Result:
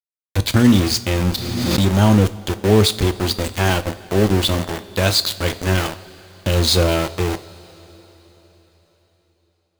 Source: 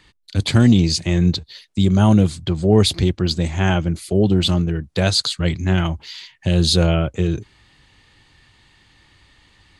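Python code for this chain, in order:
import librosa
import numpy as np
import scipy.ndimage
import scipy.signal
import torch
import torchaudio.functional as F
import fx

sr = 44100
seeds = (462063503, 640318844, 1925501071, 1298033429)

y = fx.peak_eq(x, sr, hz=170.0, db=-13.0, octaves=0.32)
y = np.where(np.abs(y) >= 10.0 ** (-20.0 / 20.0), y, 0.0)
y = fx.rev_double_slope(y, sr, seeds[0], early_s=0.35, late_s=4.3, knee_db=-17, drr_db=11.0)
y = fx.pre_swell(y, sr, db_per_s=29.0, at=(1.32, 1.86))
y = y * librosa.db_to_amplitude(1.5)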